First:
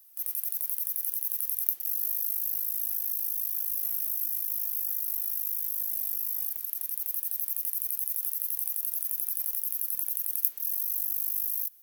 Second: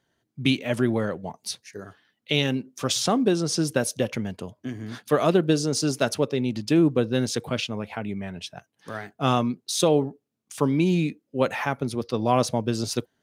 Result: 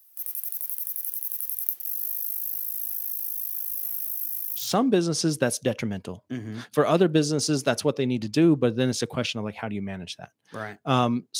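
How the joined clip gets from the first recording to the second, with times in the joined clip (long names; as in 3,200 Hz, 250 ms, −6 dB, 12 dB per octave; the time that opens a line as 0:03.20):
first
0:04.65: continue with second from 0:02.99, crossfade 0.20 s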